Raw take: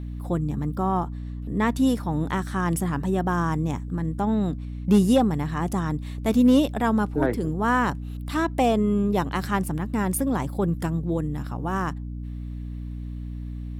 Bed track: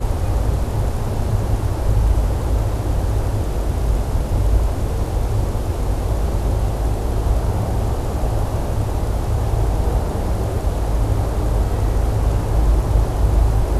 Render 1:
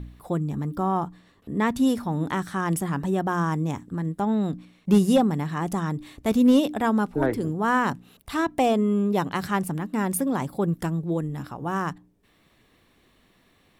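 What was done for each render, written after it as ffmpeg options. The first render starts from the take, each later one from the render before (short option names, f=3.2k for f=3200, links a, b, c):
-af "bandreject=f=60:t=h:w=4,bandreject=f=120:t=h:w=4,bandreject=f=180:t=h:w=4,bandreject=f=240:t=h:w=4,bandreject=f=300:t=h:w=4"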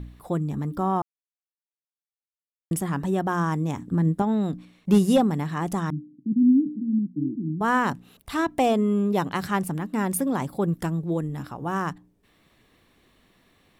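-filter_complex "[0:a]asettb=1/sr,asplit=3[a][b][c];[a]atrim=end=3.784[d];[b]atrim=start=3.78:end=4.22,asetpts=PTS-STARTPTS,afade=t=in:d=0.004:c=qsin,afade=t=out:st=0.436:d=0.004:c=qsin,equalizer=f=180:w=0.41:g=7[e];[c]atrim=start=4.216[f];[d][e]acrossfade=d=0.004:c1=hsin:c2=qsin[g];[g][f]acrossfade=d=0.004:c1=qsin:c2=hsin,asettb=1/sr,asplit=3[h][i][j];[h]atrim=end=5.904[k];[i]atrim=start=5.9:end=7.61,asetpts=PTS-STARTPTS,afade=t=in:d=0.004:c=qsin,afade=t=out:st=1.706:d=0.004:c=qsin,asuperpass=centerf=210:order=12:qfactor=1.1[l];[j]atrim=start=7.606[m];[k][l]acrossfade=d=0.004:c1=hsin:c2=qsin[n];[n][m]acrossfade=d=0.004:c1=qsin:c2=hsin,asplit=3[o][p][q];[o]atrim=end=1.02,asetpts=PTS-STARTPTS,afade=t=out:st=1.016:d=0.004:c=hsin[r];[p]atrim=start=1.02:end=2.71,asetpts=PTS-STARTPTS,volume=0[s];[q]atrim=start=2.71,asetpts=PTS-STARTPTS,afade=t=in:d=0.004:c=hsin[t];[r][s][t]concat=n=3:v=0:a=1"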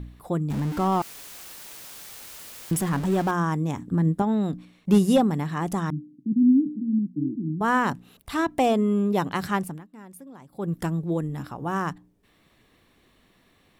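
-filter_complex "[0:a]asettb=1/sr,asplit=3[a][b][c];[a]atrim=end=0.504[d];[b]atrim=start=0.5:end=3.31,asetpts=PTS-STARTPTS,afade=t=in:d=0.004:c=qsin,afade=t=out:st=2.806:d=0.004:c=qsin,aeval=exprs='val(0)+0.5*0.0299*sgn(val(0))':c=same[e];[c]atrim=start=3.306[f];[d][e]acrossfade=d=0.004:c1=hsin:c2=qsin[g];[g][f]acrossfade=d=0.004:c1=qsin:c2=hsin,asplit=3[h][i][j];[h]atrim=end=9.85,asetpts=PTS-STARTPTS,afade=t=out:st=9.54:d=0.31:silence=0.105925[k];[i]atrim=start=9.85:end=10.49,asetpts=PTS-STARTPTS,volume=-19.5dB[l];[j]atrim=start=10.49,asetpts=PTS-STARTPTS,afade=t=in:d=0.31:silence=0.105925[m];[k][l][m]concat=n=3:v=0:a=1"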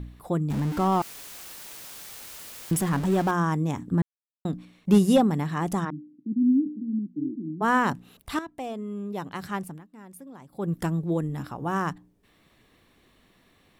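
-filter_complex "[0:a]asplit=3[a][b][c];[a]afade=t=out:st=5.84:d=0.02[d];[b]highpass=260,lowpass=2.5k,afade=t=in:st=5.84:d=0.02,afade=t=out:st=7.61:d=0.02[e];[c]afade=t=in:st=7.61:d=0.02[f];[d][e][f]amix=inputs=3:normalize=0,asplit=4[g][h][i][j];[g]atrim=end=4.02,asetpts=PTS-STARTPTS,afade=t=out:st=4.016:d=0.004:c=hsin[k];[h]atrim=start=4.02:end=4.45,asetpts=PTS-STARTPTS,volume=0[l];[i]atrim=start=4.45:end=8.39,asetpts=PTS-STARTPTS,afade=t=in:d=0.004:c=hsin,afade=t=out:st=3.936:d=0.004:c=hsin:silence=0.199526[m];[j]atrim=start=8.39,asetpts=PTS-STARTPTS,afade=t=in:d=1.86:c=qua:silence=0.199526[n];[k][l][m][n]concat=n=4:v=0:a=1"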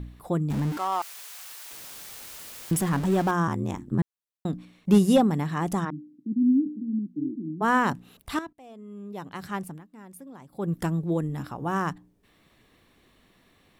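-filter_complex "[0:a]asettb=1/sr,asplit=3[a][b][c];[a]atrim=end=0.774[d];[b]atrim=start=0.77:end=1.71,asetpts=PTS-STARTPTS,afade=t=in:d=0.004:c=qsin,afade=t=out:st=0.936:d=0.004:c=qsin,highpass=770[e];[c]atrim=start=1.706[f];[d][e]acrossfade=d=0.004:c1=hsin:c2=qsin[g];[g][f]acrossfade=d=0.004:c1=qsin:c2=hsin,asettb=1/sr,asplit=3[h][i][j];[h]atrim=end=3.474[k];[i]atrim=start=3.47:end=3.99,asetpts=PTS-STARTPTS,afade=t=in:d=0.004:c=qsin,afade=t=out:st=0.516:d=0.004:c=qsin,aeval=exprs='val(0)*sin(2*PI*45*n/s)':c=same[l];[j]atrim=start=3.986[m];[k][l]acrossfade=d=0.004:c1=hsin:c2=qsin[n];[n][m]acrossfade=d=0.004:c1=qsin:c2=hsin,asplit=2[o][p];[o]atrim=end=8.53,asetpts=PTS-STARTPTS,afade=t=out:st=8.526:d=0.004:c=hsin:silence=0.112202[q];[p]atrim=start=8.53,asetpts=PTS-STARTPTS,afade=t=in:d=1.15:silence=0.112202[r];[q][r]concat=n=2:v=0:a=1"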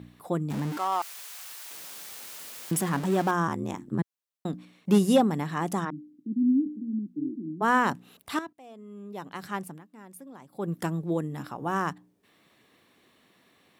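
-af "highpass=110,lowshelf=f=140:g=-8"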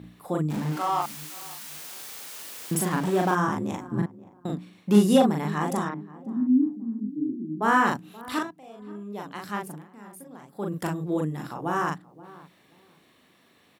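-filter_complex "[0:a]asplit=2[a][b];[b]adelay=39,volume=-2dB[c];[a][c]amix=inputs=2:normalize=0,asplit=2[d][e];[e]adelay=529,lowpass=f=880:p=1,volume=-17.5dB,asplit=2[f][g];[g]adelay=529,lowpass=f=880:p=1,volume=0.26[h];[d][f][h]amix=inputs=3:normalize=0"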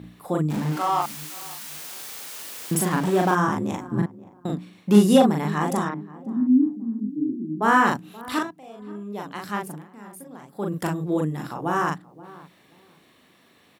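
-af "volume=3dB"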